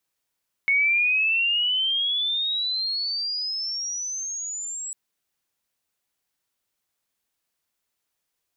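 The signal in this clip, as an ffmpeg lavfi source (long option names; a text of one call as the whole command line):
ffmpeg -f lavfi -i "aevalsrc='pow(10,(-17-13*t/4.25)/20)*sin(2*PI*2200*4.25/log(7800/2200)*(exp(log(7800/2200)*t/4.25)-1))':duration=4.25:sample_rate=44100" out.wav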